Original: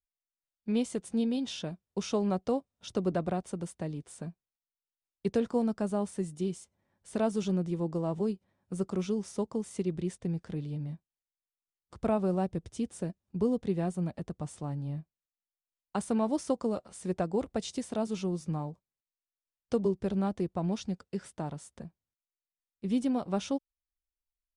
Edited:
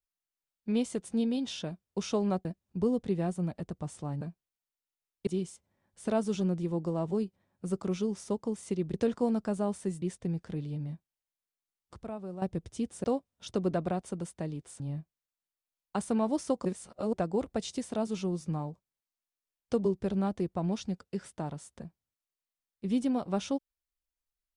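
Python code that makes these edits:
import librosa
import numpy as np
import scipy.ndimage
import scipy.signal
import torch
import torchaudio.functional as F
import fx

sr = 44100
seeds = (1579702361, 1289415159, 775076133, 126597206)

y = fx.edit(x, sr, fx.swap(start_s=2.45, length_s=1.76, other_s=13.04, other_length_s=1.76),
    fx.move(start_s=5.27, length_s=1.08, to_s=10.02),
    fx.clip_gain(start_s=12.03, length_s=0.39, db=-11.5),
    fx.reverse_span(start_s=16.65, length_s=0.48), tone=tone)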